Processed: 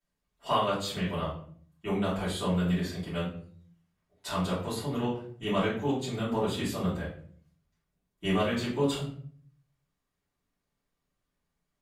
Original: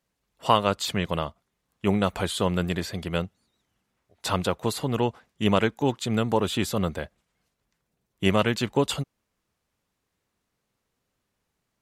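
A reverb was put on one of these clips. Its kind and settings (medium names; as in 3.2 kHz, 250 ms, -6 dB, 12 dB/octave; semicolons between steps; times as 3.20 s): simulated room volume 56 m³, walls mixed, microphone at 2.9 m; trim -18.5 dB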